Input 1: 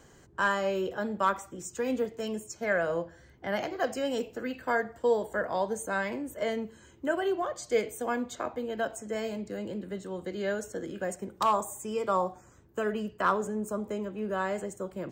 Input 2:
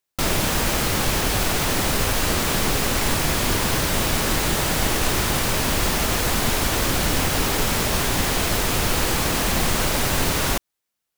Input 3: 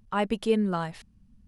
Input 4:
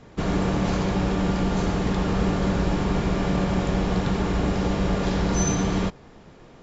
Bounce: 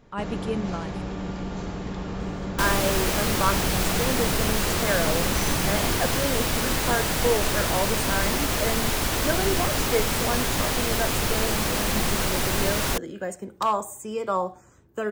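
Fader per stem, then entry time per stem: +2.0 dB, -3.5 dB, -5.0 dB, -8.5 dB; 2.20 s, 2.40 s, 0.00 s, 0.00 s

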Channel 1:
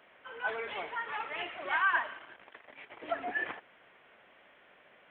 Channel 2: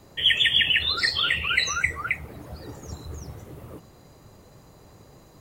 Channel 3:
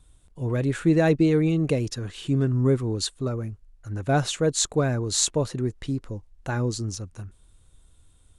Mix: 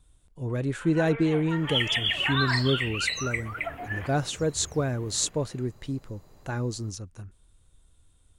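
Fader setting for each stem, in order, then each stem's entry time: -1.0 dB, -6.5 dB, -4.0 dB; 0.55 s, 1.50 s, 0.00 s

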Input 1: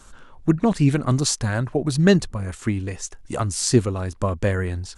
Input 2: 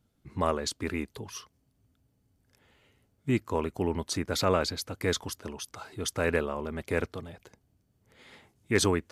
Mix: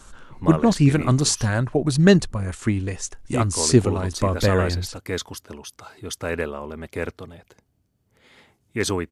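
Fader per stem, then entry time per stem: +1.5 dB, +1.0 dB; 0.00 s, 0.05 s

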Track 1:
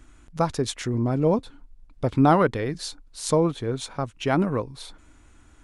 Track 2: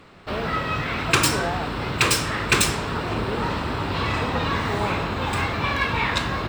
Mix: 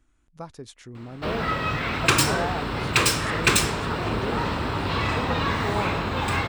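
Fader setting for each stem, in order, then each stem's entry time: -15.0 dB, -0.5 dB; 0.00 s, 0.95 s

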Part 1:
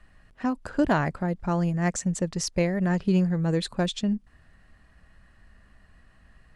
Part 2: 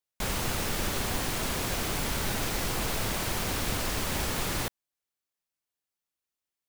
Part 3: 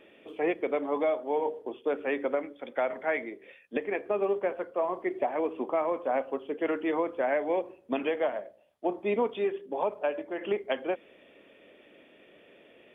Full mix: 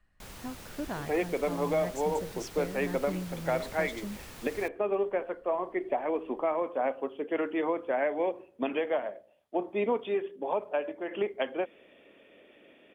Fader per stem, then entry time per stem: -14.0 dB, -16.0 dB, -1.0 dB; 0.00 s, 0.00 s, 0.70 s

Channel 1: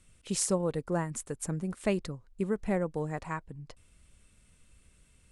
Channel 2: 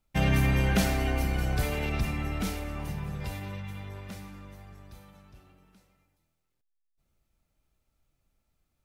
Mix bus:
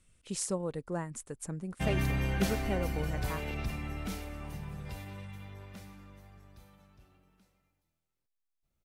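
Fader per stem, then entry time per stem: -5.0 dB, -6.5 dB; 0.00 s, 1.65 s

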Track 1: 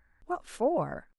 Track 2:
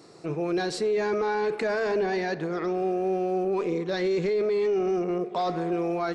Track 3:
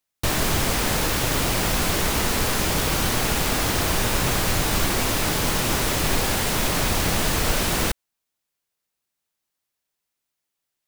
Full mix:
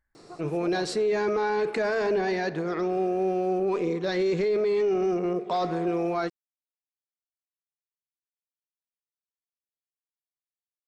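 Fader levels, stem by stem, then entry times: -13.5 dB, +0.5 dB, mute; 0.00 s, 0.15 s, mute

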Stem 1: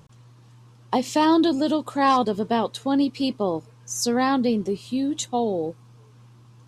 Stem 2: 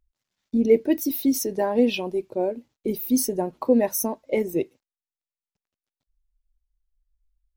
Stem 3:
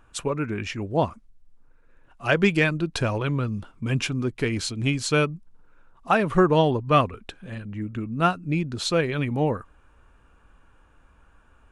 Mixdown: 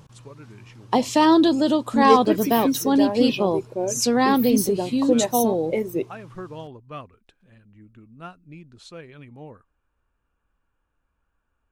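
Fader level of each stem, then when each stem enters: +2.5 dB, -1.0 dB, -18.0 dB; 0.00 s, 1.40 s, 0.00 s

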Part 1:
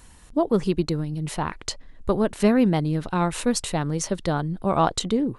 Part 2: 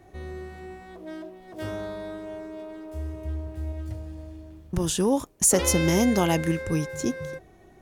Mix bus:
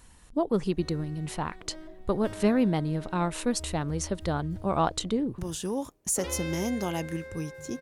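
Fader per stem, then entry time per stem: -5.0 dB, -8.5 dB; 0.00 s, 0.65 s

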